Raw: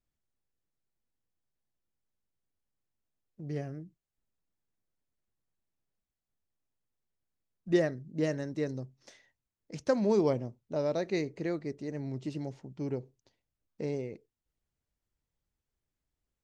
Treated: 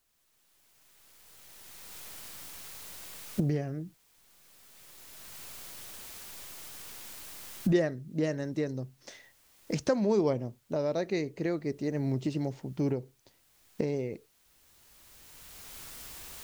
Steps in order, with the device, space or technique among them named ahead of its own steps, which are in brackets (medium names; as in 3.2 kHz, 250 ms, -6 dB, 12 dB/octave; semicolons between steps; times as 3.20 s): cheap recorder with automatic gain (white noise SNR 39 dB; recorder AGC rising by 15 dB/s)